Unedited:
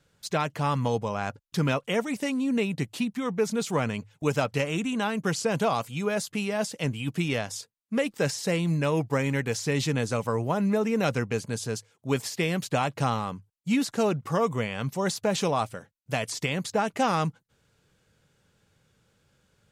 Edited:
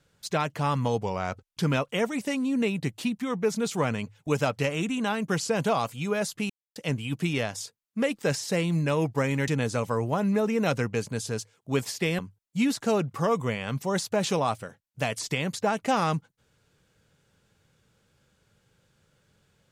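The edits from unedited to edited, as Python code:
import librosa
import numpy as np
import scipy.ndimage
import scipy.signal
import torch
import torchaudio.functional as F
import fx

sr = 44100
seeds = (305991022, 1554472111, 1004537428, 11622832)

y = fx.edit(x, sr, fx.speed_span(start_s=1.03, length_s=0.54, speed=0.92),
    fx.silence(start_s=6.45, length_s=0.26),
    fx.cut(start_s=9.43, length_s=0.42),
    fx.cut(start_s=12.56, length_s=0.74), tone=tone)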